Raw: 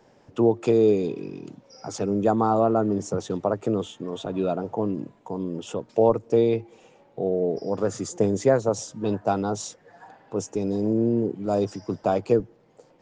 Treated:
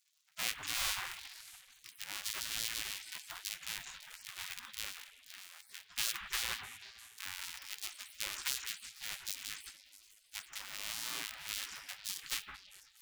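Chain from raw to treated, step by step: cycle switcher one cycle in 2, muted; modulation noise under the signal 32 dB; 7.34–8.74 s: band-stop 460 Hz, Q 12; on a send: repeats whose band climbs or falls 164 ms, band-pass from 510 Hz, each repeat 1.4 oct, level -6 dB; on the sum: spring tank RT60 2.2 s, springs 38/46 ms, chirp 80 ms, DRR 9.5 dB; spectral gate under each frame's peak -25 dB weak

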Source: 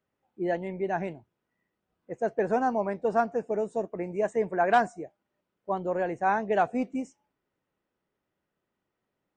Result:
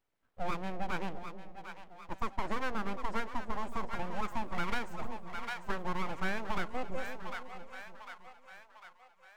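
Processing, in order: full-wave rectifier; two-band feedback delay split 650 Hz, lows 325 ms, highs 750 ms, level -12 dB; compression 6:1, threshold -27 dBFS, peak gain reduction 10.5 dB

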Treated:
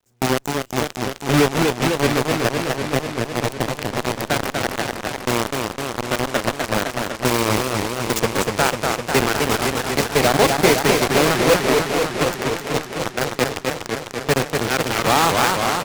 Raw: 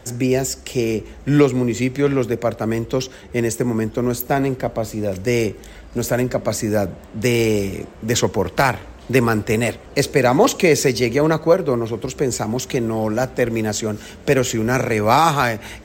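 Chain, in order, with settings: companded quantiser 2-bit; on a send: feedback delay 275 ms, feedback 59%, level -12 dB; on the sum: Chebyshev shaper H 5 -14 dB, 7 -11 dB, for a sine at 3 dBFS; modulated delay 250 ms, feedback 76%, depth 213 cents, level -4 dB; trim -10 dB

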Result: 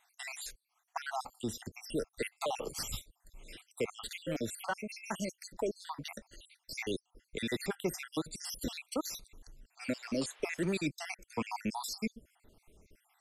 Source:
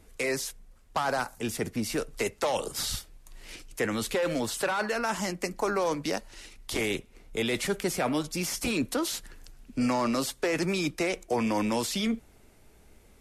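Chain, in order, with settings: random holes in the spectrogram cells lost 66%; 9.81–10.77 s: band noise 450–3400 Hz -58 dBFS; trim -3.5 dB

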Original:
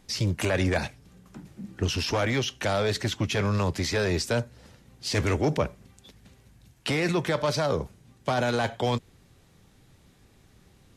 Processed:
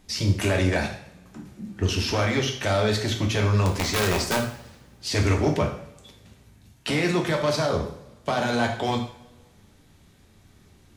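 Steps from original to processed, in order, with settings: 3.65–4.37 s: integer overflow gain 17.5 dB; two-slope reverb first 0.58 s, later 1.6 s, from -20 dB, DRR 1.5 dB

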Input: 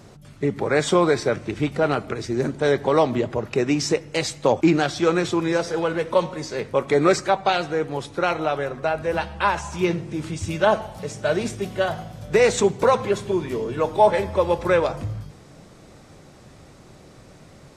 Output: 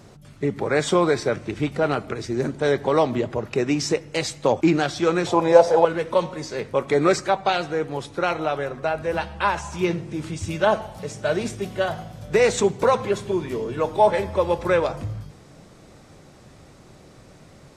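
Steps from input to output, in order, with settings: 5.26–5.85 s: high-order bell 700 Hz +14 dB 1.2 oct; trim -1 dB

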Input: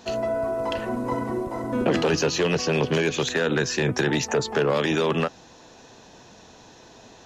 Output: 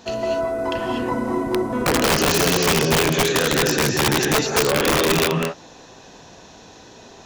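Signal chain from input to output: gated-style reverb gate 270 ms rising, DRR 0.5 dB; integer overflow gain 13 dB; trim +2 dB

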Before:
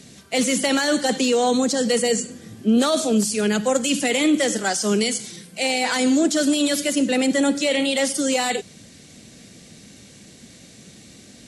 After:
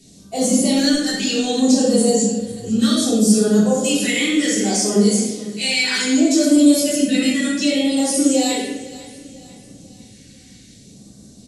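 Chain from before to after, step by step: spectral noise reduction 7 dB; 0.75–1.18 s: transient shaper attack -11 dB, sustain -7 dB; 5.83–6.56 s: high-pass 320 Hz; peak limiter -15 dBFS, peak gain reduction 6.5 dB; phase shifter stages 2, 0.65 Hz, lowest notch 650–2200 Hz; feedback delay 497 ms, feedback 46%, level -18 dB; simulated room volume 410 m³, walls mixed, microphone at 3.4 m; trim -1 dB

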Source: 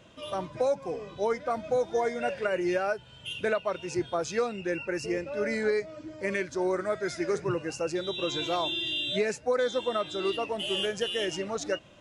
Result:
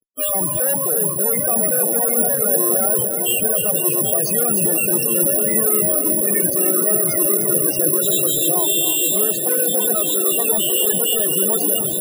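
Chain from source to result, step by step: high-pass 99 Hz 6 dB/octave; gate -44 dBFS, range -8 dB; treble shelf 2.4 kHz -2.5 dB; reverse; upward compressor, threshold -40 dBFS; reverse; fuzz box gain 52 dB, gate -52 dBFS; delay with an opening low-pass 610 ms, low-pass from 400 Hz, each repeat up 2 oct, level -3 dB; loudest bins only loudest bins 16; careless resampling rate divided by 4×, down none, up zero stuff; bit-crushed delay 299 ms, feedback 35%, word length 7-bit, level -10 dB; trim -10 dB

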